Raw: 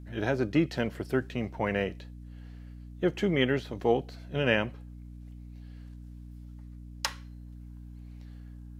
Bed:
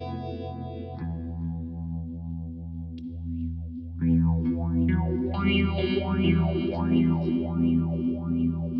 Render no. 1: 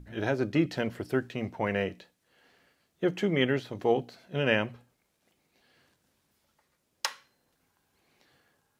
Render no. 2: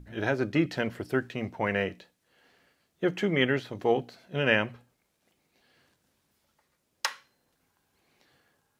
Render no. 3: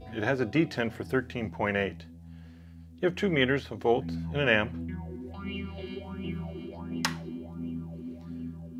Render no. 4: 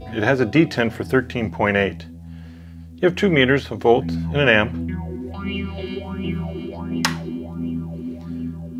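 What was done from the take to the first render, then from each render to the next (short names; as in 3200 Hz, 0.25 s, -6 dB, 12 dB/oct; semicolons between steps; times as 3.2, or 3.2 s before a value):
notches 60/120/180/240/300 Hz
dynamic EQ 1700 Hz, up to +4 dB, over -42 dBFS, Q 0.94
add bed -13 dB
gain +10 dB; limiter -1 dBFS, peak gain reduction 2.5 dB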